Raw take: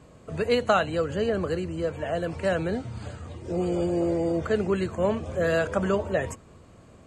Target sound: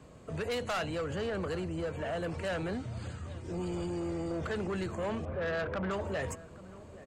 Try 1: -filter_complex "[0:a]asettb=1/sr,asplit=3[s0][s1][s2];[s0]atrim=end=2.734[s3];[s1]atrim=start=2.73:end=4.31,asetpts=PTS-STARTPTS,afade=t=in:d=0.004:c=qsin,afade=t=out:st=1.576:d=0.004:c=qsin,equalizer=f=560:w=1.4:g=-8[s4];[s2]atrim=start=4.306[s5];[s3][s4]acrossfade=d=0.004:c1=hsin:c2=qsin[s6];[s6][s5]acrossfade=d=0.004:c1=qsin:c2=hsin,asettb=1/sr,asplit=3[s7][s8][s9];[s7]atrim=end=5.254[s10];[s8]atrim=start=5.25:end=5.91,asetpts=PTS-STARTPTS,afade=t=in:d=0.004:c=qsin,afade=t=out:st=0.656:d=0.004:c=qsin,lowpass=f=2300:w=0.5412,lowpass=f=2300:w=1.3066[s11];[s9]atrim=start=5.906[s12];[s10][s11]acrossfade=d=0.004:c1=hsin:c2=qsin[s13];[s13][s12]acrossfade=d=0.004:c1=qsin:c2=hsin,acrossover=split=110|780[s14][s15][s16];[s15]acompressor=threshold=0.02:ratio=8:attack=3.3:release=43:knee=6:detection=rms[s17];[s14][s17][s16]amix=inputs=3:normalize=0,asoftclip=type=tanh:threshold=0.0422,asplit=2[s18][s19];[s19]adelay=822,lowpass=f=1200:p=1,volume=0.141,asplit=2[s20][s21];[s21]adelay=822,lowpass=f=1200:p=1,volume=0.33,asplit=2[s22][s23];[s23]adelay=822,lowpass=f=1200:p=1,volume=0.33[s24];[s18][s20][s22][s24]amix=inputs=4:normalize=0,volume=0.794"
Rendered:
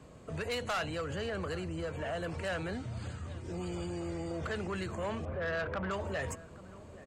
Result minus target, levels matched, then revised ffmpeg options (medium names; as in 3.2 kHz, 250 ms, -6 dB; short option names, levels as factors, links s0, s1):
compression: peak gain reduction +6.5 dB
-filter_complex "[0:a]asettb=1/sr,asplit=3[s0][s1][s2];[s0]atrim=end=2.734[s3];[s1]atrim=start=2.73:end=4.31,asetpts=PTS-STARTPTS,afade=t=in:d=0.004:c=qsin,afade=t=out:st=1.576:d=0.004:c=qsin,equalizer=f=560:w=1.4:g=-8[s4];[s2]atrim=start=4.306[s5];[s3][s4]acrossfade=d=0.004:c1=hsin:c2=qsin[s6];[s6][s5]acrossfade=d=0.004:c1=qsin:c2=hsin,asettb=1/sr,asplit=3[s7][s8][s9];[s7]atrim=end=5.254[s10];[s8]atrim=start=5.25:end=5.91,asetpts=PTS-STARTPTS,afade=t=in:d=0.004:c=qsin,afade=t=out:st=0.656:d=0.004:c=qsin,lowpass=f=2300:w=0.5412,lowpass=f=2300:w=1.3066[s11];[s9]atrim=start=5.906[s12];[s10][s11]acrossfade=d=0.004:c1=hsin:c2=qsin[s13];[s13][s12]acrossfade=d=0.004:c1=qsin:c2=hsin,acrossover=split=110|780[s14][s15][s16];[s15]acompressor=threshold=0.0473:ratio=8:attack=3.3:release=43:knee=6:detection=rms[s17];[s14][s17][s16]amix=inputs=3:normalize=0,asoftclip=type=tanh:threshold=0.0422,asplit=2[s18][s19];[s19]adelay=822,lowpass=f=1200:p=1,volume=0.141,asplit=2[s20][s21];[s21]adelay=822,lowpass=f=1200:p=1,volume=0.33,asplit=2[s22][s23];[s23]adelay=822,lowpass=f=1200:p=1,volume=0.33[s24];[s18][s20][s22][s24]amix=inputs=4:normalize=0,volume=0.794"